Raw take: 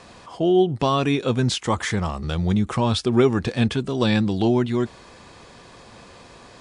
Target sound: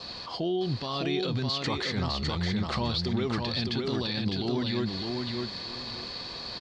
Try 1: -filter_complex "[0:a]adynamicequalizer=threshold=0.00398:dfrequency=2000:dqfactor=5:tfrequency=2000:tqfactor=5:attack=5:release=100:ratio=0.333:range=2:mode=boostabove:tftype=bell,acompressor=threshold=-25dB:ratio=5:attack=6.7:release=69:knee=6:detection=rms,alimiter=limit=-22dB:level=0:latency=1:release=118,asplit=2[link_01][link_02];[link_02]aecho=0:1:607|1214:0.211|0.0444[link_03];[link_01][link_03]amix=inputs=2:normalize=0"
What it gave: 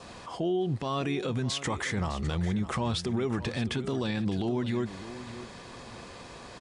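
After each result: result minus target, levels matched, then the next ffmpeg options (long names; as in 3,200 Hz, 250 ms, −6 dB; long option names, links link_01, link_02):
echo-to-direct −10 dB; 4,000 Hz band −6.5 dB
-filter_complex "[0:a]adynamicequalizer=threshold=0.00398:dfrequency=2000:dqfactor=5:tfrequency=2000:tqfactor=5:attack=5:release=100:ratio=0.333:range=2:mode=boostabove:tftype=bell,acompressor=threshold=-25dB:ratio=5:attack=6.7:release=69:knee=6:detection=rms,alimiter=limit=-22dB:level=0:latency=1:release=118,asplit=2[link_01][link_02];[link_02]aecho=0:1:607|1214|1821:0.668|0.14|0.0295[link_03];[link_01][link_03]amix=inputs=2:normalize=0"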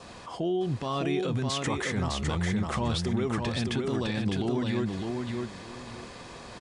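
4,000 Hz band −6.5 dB
-filter_complex "[0:a]adynamicequalizer=threshold=0.00398:dfrequency=2000:dqfactor=5:tfrequency=2000:tqfactor=5:attack=5:release=100:ratio=0.333:range=2:mode=boostabove:tftype=bell,acompressor=threshold=-25dB:ratio=5:attack=6.7:release=69:knee=6:detection=rms,lowpass=frequency=4400:width_type=q:width=9.8,alimiter=limit=-22dB:level=0:latency=1:release=118,asplit=2[link_01][link_02];[link_02]aecho=0:1:607|1214|1821:0.668|0.14|0.0295[link_03];[link_01][link_03]amix=inputs=2:normalize=0"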